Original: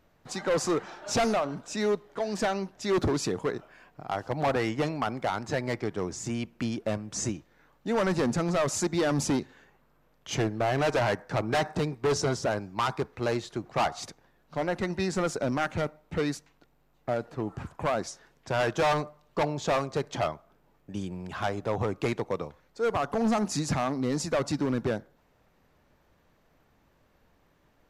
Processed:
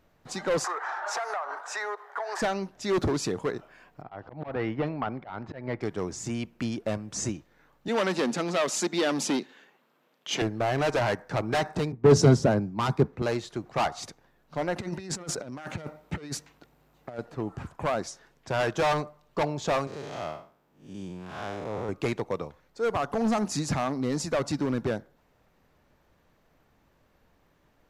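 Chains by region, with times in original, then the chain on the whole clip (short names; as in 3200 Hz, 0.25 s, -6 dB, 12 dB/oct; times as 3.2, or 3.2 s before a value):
0.64–2.42 steep high-pass 390 Hz 48 dB/oct + band shelf 1200 Hz +15 dB + compressor 12:1, threshold -28 dBFS
4.02–5.81 auto swell 0.175 s + air absorption 360 m
7.88–10.42 HPF 200 Hz 24 dB/oct + bell 3200 Hz +6.5 dB 1.1 oct
11.92–13.22 bell 180 Hz +13.5 dB 2.7 oct + three-band expander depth 70%
14.76–17.19 HPF 56 Hz + negative-ratio compressor -34 dBFS, ratio -0.5
19.87–21.89 time blur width 0.188 s + HPF 150 Hz 6 dB/oct
whole clip: dry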